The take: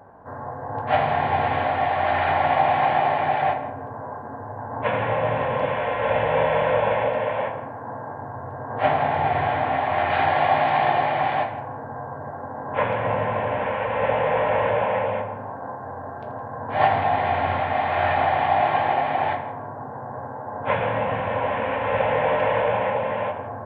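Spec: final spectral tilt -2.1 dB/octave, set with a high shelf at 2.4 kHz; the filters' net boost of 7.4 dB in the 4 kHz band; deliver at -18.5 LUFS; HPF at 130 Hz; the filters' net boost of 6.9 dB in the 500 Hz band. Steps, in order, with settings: high-pass 130 Hz; peaking EQ 500 Hz +8 dB; treble shelf 2.4 kHz +4 dB; peaking EQ 4 kHz +7 dB; trim -1 dB

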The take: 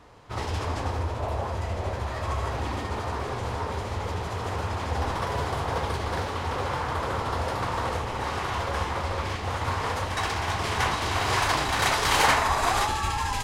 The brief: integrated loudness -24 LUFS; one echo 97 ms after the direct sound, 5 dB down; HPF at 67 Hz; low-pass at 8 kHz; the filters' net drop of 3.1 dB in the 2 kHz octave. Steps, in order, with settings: high-pass 67 Hz; low-pass 8 kHz; peaking EQ 2 kHz -4 dB; delay 97 ms -5 dB; trim +3.5 dB

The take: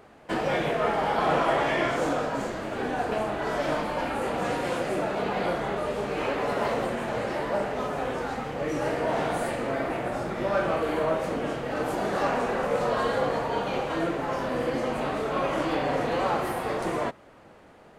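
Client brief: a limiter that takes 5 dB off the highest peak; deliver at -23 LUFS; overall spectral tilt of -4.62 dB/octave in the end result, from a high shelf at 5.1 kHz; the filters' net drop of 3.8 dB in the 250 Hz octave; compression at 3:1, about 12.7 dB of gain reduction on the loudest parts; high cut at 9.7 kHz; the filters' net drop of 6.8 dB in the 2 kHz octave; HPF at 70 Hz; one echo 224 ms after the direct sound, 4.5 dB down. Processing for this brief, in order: high-pass 70 Hz; low-pass 9.7 kHz; peaking EQ 250 Hz -5 dB; peaking EQ 2 kHz -8 dB; treble shelf 5.1 kHz -7.5 dB; compression 3:1, threshold -40 dBFS; peak limiter -32.5 dBFS; delay 224 ms -4.5 dB; trim +17.5 dB

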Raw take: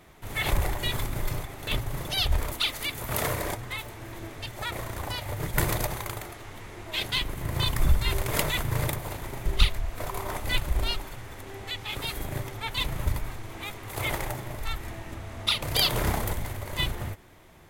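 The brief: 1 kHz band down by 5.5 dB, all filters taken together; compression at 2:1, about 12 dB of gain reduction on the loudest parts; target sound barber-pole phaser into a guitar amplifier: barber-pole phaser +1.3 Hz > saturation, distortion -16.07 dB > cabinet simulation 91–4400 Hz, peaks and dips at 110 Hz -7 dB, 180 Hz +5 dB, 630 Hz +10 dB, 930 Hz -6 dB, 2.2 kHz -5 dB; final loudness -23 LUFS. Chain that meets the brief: peaking EQ 1 kHz -7.5 dB; compression 2:1, threshold -36 dBFS; barber-pole phaser +1.3 Hz; saturation -30 dBFS; cabinet simulation 91–4400 Hz, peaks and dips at 110 Hz -7 dB, 180 Hz +5 dB, 630 Hz +10 dB, 930 Hz -6 dB, 2.2 kHz -5 dB; trim +20.5 dB

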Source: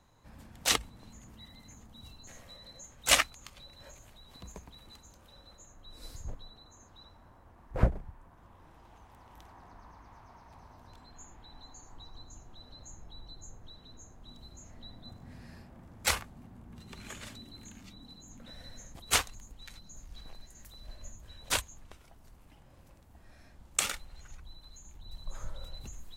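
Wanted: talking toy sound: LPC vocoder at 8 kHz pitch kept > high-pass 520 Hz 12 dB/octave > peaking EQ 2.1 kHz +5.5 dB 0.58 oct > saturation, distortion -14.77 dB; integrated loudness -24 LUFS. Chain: LPC vocoder at 8 kHz pitch kept; high-pass 520 Hz 12 dB/octave; peaking EQ 2.1 kHz +5.5 dB 0.58 oct; saturation -19 dBFS; trim +10 dB

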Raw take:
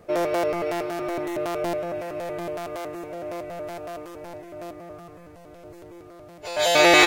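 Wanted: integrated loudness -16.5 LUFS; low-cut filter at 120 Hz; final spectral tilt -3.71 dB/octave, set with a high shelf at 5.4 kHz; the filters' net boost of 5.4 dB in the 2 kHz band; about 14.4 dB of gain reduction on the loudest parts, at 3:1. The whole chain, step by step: high-pass 120 Hz; peaking EQ 2 kHz +7 dB; treble shelf 5.4 kHz -3.5 dB; compression 3:1, threshold -29 dBFS; trim +15.5 dB

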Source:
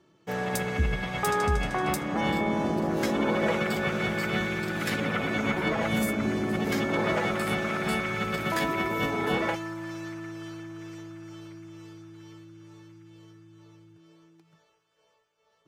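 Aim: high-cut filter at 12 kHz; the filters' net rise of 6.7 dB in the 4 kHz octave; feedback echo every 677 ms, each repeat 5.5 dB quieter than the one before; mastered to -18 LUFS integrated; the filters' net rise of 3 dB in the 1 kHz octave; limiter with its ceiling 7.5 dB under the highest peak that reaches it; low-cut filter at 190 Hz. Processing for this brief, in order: high-pass 190 Hz; low-pass 12 kHz; peaking EQ 1 kHz +3.5 dB; peaking EQ 4 kHz +8.5 dB; peak limiter -19.5 dBFS; feedback delay 677 ms, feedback 53%, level -5.5 dB; trim +10 dB

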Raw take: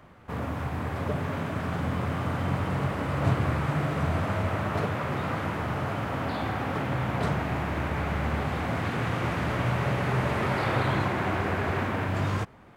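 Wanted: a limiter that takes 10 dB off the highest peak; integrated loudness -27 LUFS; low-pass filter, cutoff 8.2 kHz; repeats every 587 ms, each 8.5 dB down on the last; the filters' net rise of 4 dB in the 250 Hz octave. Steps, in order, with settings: low-pass 8.2 kHz; peaking EQ 250 Hz +5.5 dB; peak limiter -20.5 dBFS; feedback delay 587 ms, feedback 38%, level -8.5 dB; trim +2 dB

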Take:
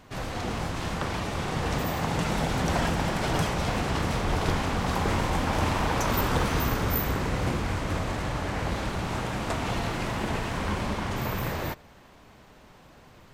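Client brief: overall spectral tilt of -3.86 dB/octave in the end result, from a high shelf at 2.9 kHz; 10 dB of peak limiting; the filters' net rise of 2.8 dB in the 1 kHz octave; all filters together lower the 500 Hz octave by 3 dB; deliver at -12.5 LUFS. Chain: peaking EQ 500 Hz -5.5 dB; peaking EQ 1 kHz +4 dB; treble shelf 2.9 kHz +8.5 dB; trim +16 dB; peak limiter -3 dBFS

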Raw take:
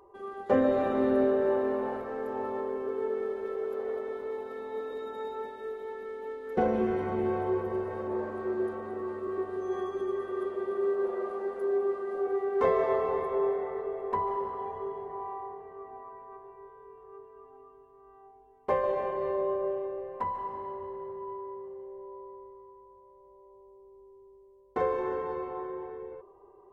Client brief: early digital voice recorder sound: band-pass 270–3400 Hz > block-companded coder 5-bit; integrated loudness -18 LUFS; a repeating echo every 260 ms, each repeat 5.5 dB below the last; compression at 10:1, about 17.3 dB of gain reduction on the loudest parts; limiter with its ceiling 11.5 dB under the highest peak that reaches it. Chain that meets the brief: compression 10:1, threshold -38 dBFS; peak limiter -38.5 dBFS; band-pass 270–3400 Hz; feedback delay 260 ms, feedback 53%, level -5.5 dB; block-companded coder 5-bit; trim +28.5 dB

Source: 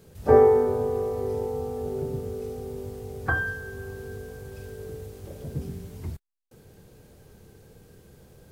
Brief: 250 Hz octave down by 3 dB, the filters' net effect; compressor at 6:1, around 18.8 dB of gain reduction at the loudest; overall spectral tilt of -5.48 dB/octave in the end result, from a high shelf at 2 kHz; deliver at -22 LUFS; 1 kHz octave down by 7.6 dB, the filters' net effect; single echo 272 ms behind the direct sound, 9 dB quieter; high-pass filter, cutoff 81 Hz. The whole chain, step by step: high-pass 81 Hz; peaking EQ 250 Hz -3 dB; peaking EQ 1 kHz -9 dB; treble shelf 2 kHz -8.5 dB; compression 6:1, threshold -36 dBFS; delay 272 ms -9 dB; trim +18 dB

